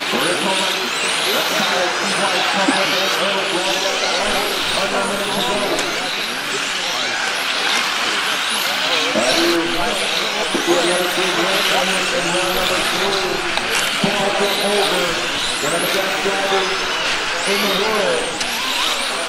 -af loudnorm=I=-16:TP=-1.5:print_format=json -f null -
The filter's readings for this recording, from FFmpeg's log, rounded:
"input_i" : "-16.8",
"input_tp" : "-1.1",
"input_lra" : "1.3",
"input_thresh" : "-26.8",